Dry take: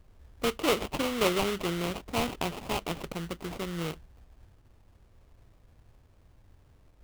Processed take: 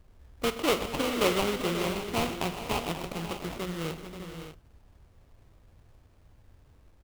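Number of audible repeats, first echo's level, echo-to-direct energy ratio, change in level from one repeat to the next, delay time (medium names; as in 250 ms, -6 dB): 6, -15.5 dB, -5.5 dB, no regular repeats, 49 ms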